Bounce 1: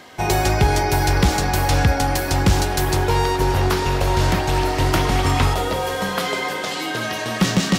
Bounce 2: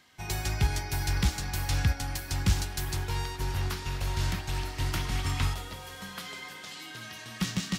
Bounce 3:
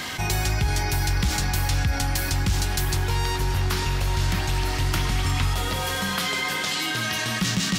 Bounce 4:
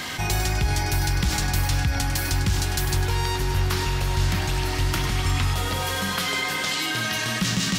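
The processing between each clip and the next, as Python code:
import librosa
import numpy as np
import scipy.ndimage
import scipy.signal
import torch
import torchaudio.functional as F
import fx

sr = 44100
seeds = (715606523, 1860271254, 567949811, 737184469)

y1 = fx.peak_eq(x, sr, hz=520.0, db=-13.0, octaves=2.1)
y1 = fx.upward_expand(y1, sr, threshold_db=-28.0, expansion=1.5)
y1 = y1 * librosa.db_to_amplitude(-6.0)
y2 = fx.env_flatten(y1, sr, amount_pct=70)
y3 = y2 + 10.0 ** (-10.0 / 20.0) * np.pad(y2, (int(100 * sr / 1000.0), 0))[:len(y2)]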